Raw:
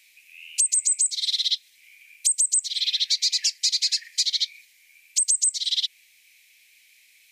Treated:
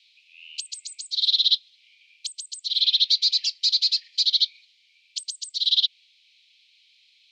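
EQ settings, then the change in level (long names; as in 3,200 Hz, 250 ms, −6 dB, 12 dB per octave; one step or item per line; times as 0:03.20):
flat-topped band-pass 3,700 Hz, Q 2.2
+4.5 dB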